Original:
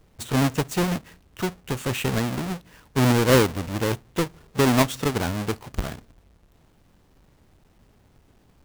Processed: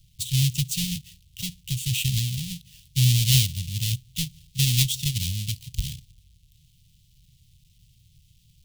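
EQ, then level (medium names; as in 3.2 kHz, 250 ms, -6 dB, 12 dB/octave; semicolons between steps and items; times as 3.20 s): elliptic band-stop 140–3100 Hz, stop band 40 dB; bass shelf 90 Hz -7.5 dB; +6.5 dB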